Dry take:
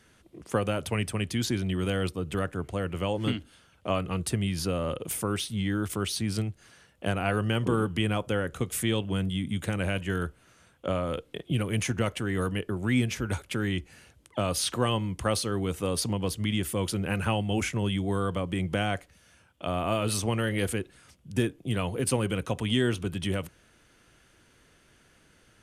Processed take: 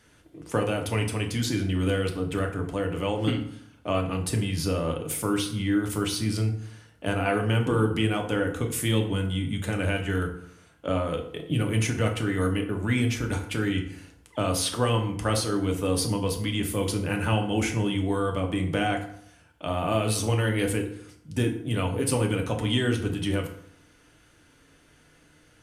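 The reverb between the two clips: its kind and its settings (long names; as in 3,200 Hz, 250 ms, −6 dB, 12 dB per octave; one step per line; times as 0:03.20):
feedback delay network reverb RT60 0.69 s, low-frequency decay 1.1×, high-frequency decay 0.65×, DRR 2 dB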